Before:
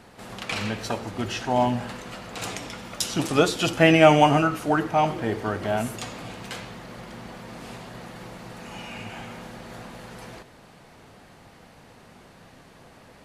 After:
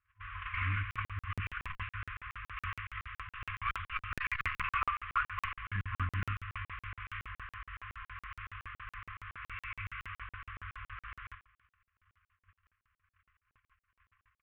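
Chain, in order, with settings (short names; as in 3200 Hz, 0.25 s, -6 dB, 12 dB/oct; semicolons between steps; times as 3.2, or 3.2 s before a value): CVSD 16 kbps; LPF 2100 Hz 6 dB/oct; gate -47 dBFS, range -33 dB; FFT band-reject 110–1100 Hz; dynamic EQ 1400 Hz, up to -3 dB, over -48 dBFS, Q 1.8; on a send: feedback echo 0.111 s, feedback 55%, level -21.5 dB; on the sum: speed mistake 48 kHz file played as 44.1 kHz; crackling interface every 0.14 s, samples 2048, zero, from 0.91; core saturation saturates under 250 Hz; gain +4 dB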